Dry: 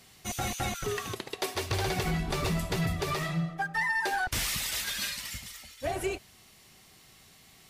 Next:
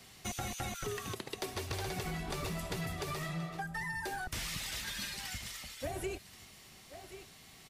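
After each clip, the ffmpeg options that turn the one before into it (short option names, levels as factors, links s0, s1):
-filter_complex "[0:a]highshelf=f=11000:g=-4,aecho=1:1:1078:0.1,acrossover=split=290|7300[s0][s1][s2];[s0]acompressor=threshold=0.00794:ratio=4[s3];[s1]acompressor=threshold=0.00891:ratio=4[s4];[s2]acompressor=threshold=0.00316:ratio=4[s5];[s3][s4][s5]amix=inputs=3:normalize=0,volume=1.12"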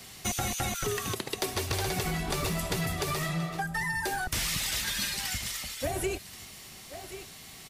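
-af "highshelf=f=5700:g=5,volume=2.24"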